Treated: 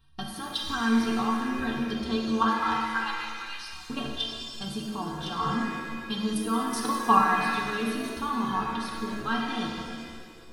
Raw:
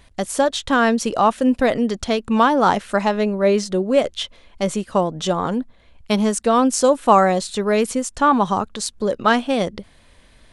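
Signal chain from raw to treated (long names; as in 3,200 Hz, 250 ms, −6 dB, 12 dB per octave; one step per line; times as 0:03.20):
0:02.45–0:03.90: inverse Chebyshev band-stop filter 200–540 Hz, stop band 40 dB
output level in coarse steps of 12 dB
phaser with its sweep stopped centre 2,100 Hz, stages 6
stiff-string resonator 67 Hz, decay 0.38 s, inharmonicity 0.03
reverb with rising layers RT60 1.9 s, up +7 semitones, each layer −8 dB, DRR −0.5 dB
level +7 dB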